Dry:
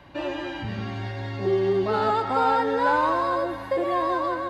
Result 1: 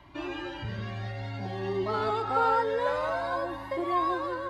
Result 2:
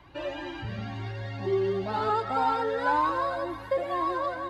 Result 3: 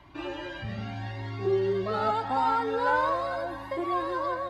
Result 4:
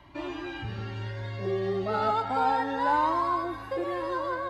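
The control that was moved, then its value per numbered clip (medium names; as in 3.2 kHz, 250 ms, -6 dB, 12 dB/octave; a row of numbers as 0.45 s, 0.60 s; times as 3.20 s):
Shepard-style flanger, rate: 0.53 Hz, 2 Hz, 0.8 Hz, 0.32 Hz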